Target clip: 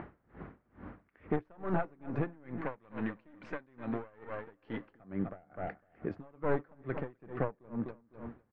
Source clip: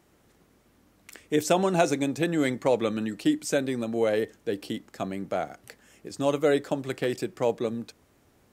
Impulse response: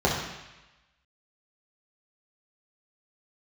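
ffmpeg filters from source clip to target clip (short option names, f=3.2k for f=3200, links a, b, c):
-filter_complex "[0:a]aeval=exprs='clip(val(0),-1,0.0299)':c=same,equalizer=f=410:w=0.6:g=-4,aecho=1:1:252|504|756:0.251|0.0804|0.0257,acompressor=mode=upward:threshold=-51dB:ratio=2.5,asettb=1/sr,asplit=3[a][b][c];[a]atrim=end=2.614[d];[b]atrim=start=2.61:end=4.9,asetpts=PTS-STARTPTS,afade=t=in:d=0.004:c=qsin,afade=t=out:st=2.286:d=0.004:c=qsin,tiltshelf=f=1.3k:g=-6.5[e];[c]atrim=start=4.896[f];[d][e]acrossfade=d=0.004:c1=hsin:c2=qsin[g];[g][f]acrossfade=d=0.004:c1=qsin:c2=hsin,acompressor=threshold=-50dB:ratio=2,lowpass=f=1.8k:w=0.5412,lowpass=f=1.8k:w=1.3066,aeval=exprs='val(0)*pow(10,-30*(0.5-0.5*cos(2*PI*2.3*n/s))/20)':c=same,volume=14.5dB"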